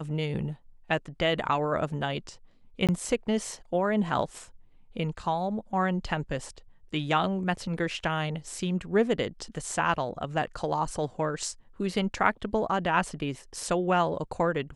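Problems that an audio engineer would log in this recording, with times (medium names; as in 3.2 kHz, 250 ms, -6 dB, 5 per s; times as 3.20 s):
2.87–2.89 s: dropout 17 ms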